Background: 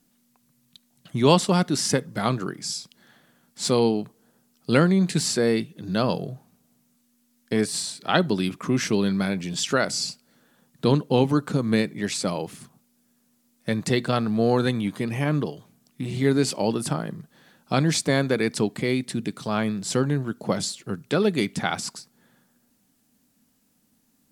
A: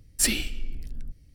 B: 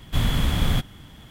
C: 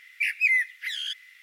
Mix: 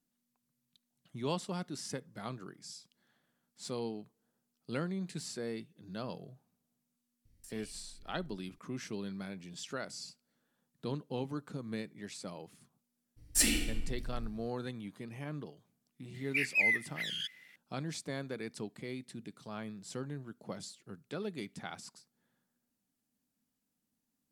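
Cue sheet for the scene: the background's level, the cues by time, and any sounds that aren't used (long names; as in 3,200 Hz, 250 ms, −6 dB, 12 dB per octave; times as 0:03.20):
background −18 dB
0:07.25: mix in A −14 dB + downward compressor 16 to 1, threshold −36 dBFS
0:13.16: mix in A −6 dB, fades 0.02 s + feedback delay network reverb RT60 1.1 s, low-frequency decay 0.75×, high-frequency decay 0.55×, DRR 0.5 dB
0:16.14: mix in C −6.5 dB
not used: B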